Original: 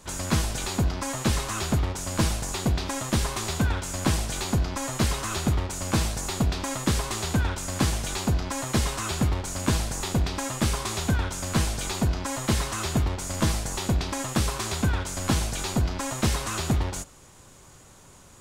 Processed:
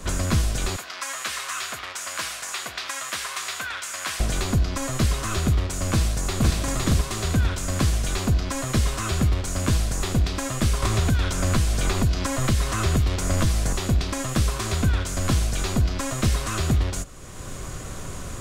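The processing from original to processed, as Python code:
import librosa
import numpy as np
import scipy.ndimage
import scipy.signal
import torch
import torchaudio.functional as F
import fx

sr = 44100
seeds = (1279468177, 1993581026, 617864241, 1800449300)

y = fx.highpass(x, sr, hz=1400.0, slope=12, at=(0.76, 4.2))
y = fx.echo_throw(y, sr, start_s=5.9, length_s=0.6, ms=510, feedback_pct=20, wet_db=-0.5)
y = fx.band_squash(y, sr, depth_pct=100, at=(10.82, 13.73))
y = fx.low_shelf(y, sr, hz=65.0, db=10.0)
y = fx.notch(y, sr, hz=870.0, q=5.2)
y = fx.band_squash(y, sr, depth_pct=70)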